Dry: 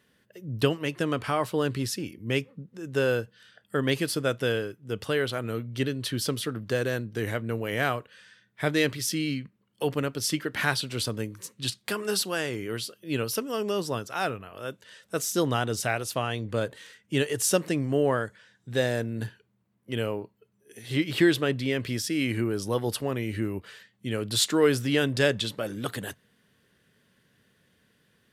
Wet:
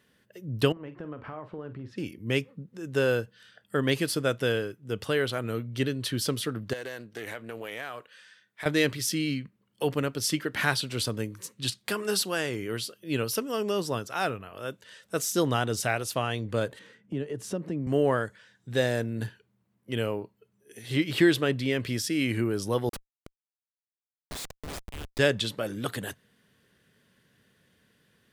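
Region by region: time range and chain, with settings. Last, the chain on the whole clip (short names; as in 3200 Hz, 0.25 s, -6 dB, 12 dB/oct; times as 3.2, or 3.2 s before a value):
0.72–1.98 LPF 1300 Hz + compressor 3:1, threshold -39 dBFS + doubler 46 ms -11.5 dB
6.73–8.66 HPF 580 Hz 6 dB/oct + compressor, threshold -32 dBFS + Doppler distortion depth 0.11 ms
16.79–17.87 HPF 150 Hz 24 dB/oct + tilt -4.5 dB/oct + compressor 2:1, threshold -38 dBFS
22.89–25.19 differentiator + echo 0.319 s -12 dB + Schmitt trigger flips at -31.5 dBFS
whole clip: dry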